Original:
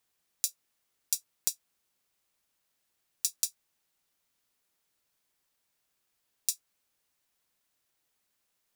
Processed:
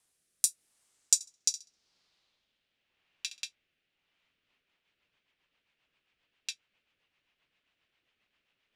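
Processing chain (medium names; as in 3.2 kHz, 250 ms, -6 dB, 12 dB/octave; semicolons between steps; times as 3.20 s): rotary cabinet horn 0.85 Hz, later 7.5 Hz, at 4.01 s; 1.14–3.45 s: flutter echo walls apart 11.3 m, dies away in 0.3 s; in parallel at -11 dB: hard clipper -13 dBFS, distortion -13 dB; on the sum: low-pass sweep 9.8 kHz -> 2.8 kHz, 0.67–2.88 s; trim +3 dB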